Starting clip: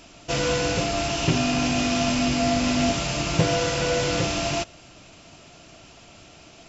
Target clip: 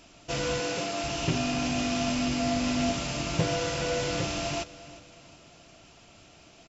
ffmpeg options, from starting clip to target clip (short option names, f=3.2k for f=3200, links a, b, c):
-filter_complex "[0:a]asettb=1/sr,asplit=3[a][b][c];[a]atrim=end=0.604[d];[b]atrim=start=0.6:end=1.04,asetpts=PTS-STARTPTS,afade=t=in:d=0.004:c=qsin,afade=t=out:st=0.436:d=0.004:c=qsin,highpass=210[e];[c]atrim=start=1.036[f];[d][e]acrossfade=d=0.004:c1=hsin:c2=qsin[g];[g][f]acrossfade=d=0.004:c1=qsin:c2=hsin,asplit=2[h][i];[i]aecho=0:1:359|718|1077|1436:0.126|0.0554|0.0244|0.0107[j];[h][j]amix=inputs=2:normalize=0,volume=-6dB"